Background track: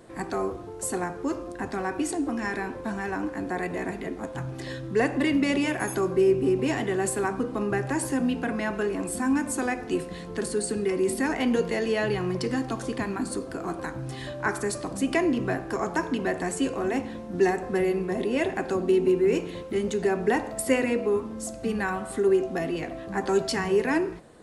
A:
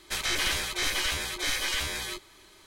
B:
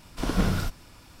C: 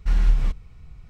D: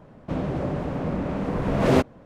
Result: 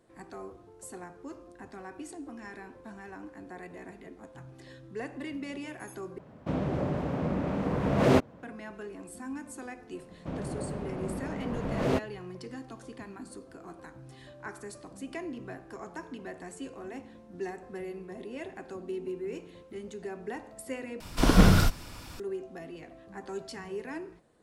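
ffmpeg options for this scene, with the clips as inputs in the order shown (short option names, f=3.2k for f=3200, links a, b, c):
-filter_complex "[4:a]asplit=2[a][b];[0:a]volume=-14.5dB[c];[a]highpass=58[d];[2:a]acontrast=68[e];[c]asplit=3[f][g][h];[f]atrim=end=6.184[i];[d]atrim=end=2.25,asetpts=PTS-STARTPTS,volume=-3dB[j];[g]atrim=start=8.426:end=21.004[k];[e]atrim=end=1.2,asetpts=PTS-STARTPTS,volume=-0.5dB[l];[h]atrim=start=22.196[m];[b]atrim=end=2.25,asetpts=PTS-STARTPTS,volume=-9dB,afade=t=in:d=0.004:c=hsin,afade=t=out:st=2.246:d=0.004:c=hsin,adelay=9970[n];[i][j]acrossfade=d=0.004:c1=hsin:c2=hsin[o];[o][k]acrossfade=d=0.004:c1=hsin:c2=hsin[p];[p][l]acrossfade=d=0.004:c1=hsin:c2=hsin[q];[q][m]acrossfade=d=0.004:c1=hsin:c2=hsin[r];[r][n]amix=inputs=2:normalize=0"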